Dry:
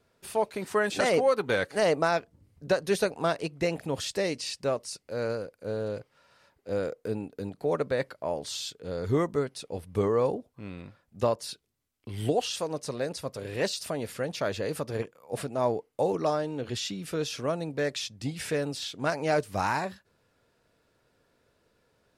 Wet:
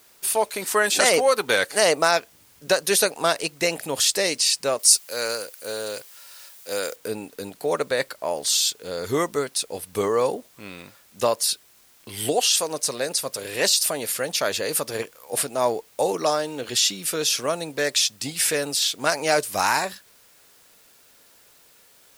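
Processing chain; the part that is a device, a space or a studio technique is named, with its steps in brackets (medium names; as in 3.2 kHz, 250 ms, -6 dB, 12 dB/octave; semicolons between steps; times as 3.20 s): turntable without a phono preamp (RIAA curve recording; white noise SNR 31 dB); 4.79–6.96 s: tilt EQ +2.5 dB/octave; trim +6.5 dB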